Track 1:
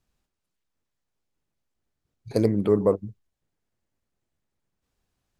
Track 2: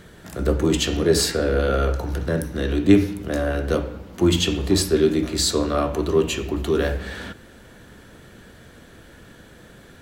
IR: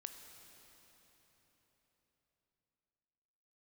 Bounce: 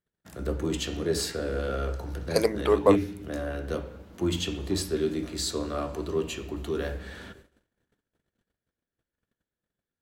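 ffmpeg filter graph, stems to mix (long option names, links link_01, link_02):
-filter_complex "[0:a]highpass=740,acontrast=62,volume=2.5dB[link_01];[1:a]volume=-11dB,asplit=2[link_02][link_03];[link_03]volume=-9.5dB[link_04];[2:a]atrim=start_sample=2205[link_05];[link_04][link_05]afir=irnorm=-1:irlink=0[link_06];[link_01][link_02][link_06]amix=inputs=3:normalize=0,agate=range=-36dB:threshold=-50dB:ratio=16:detection=peak"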